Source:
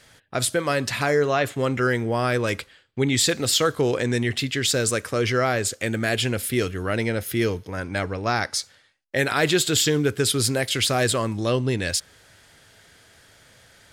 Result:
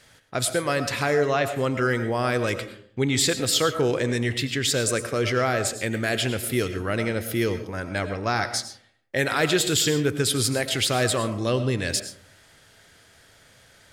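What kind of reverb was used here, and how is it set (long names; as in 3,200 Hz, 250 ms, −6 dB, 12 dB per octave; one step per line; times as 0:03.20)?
comb and all-pass reverb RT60 0.59 s, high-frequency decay 0.35×, pre-delay 65 ms, DRR 10 dB
level −1.5 dB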